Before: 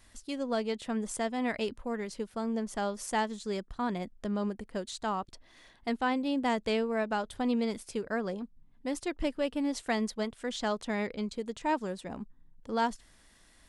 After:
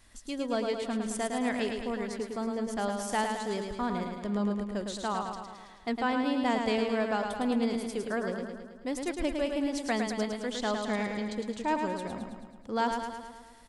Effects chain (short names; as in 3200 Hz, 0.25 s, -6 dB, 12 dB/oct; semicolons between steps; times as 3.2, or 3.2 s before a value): feedback echo 0.108 s, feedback 60%, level -5 dB